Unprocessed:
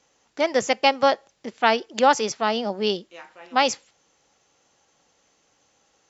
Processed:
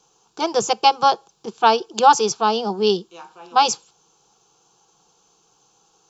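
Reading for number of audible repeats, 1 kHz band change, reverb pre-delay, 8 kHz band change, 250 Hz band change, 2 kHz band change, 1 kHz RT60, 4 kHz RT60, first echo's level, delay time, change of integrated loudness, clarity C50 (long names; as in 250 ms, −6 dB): no echo audible, +6.0 dB, no reverb audible, can't be measured, +0.5 dB, −3.0 dB, no reverb audible, no reverb audible, no echo audible, no echo audible, +3.5 dB, no reverb audible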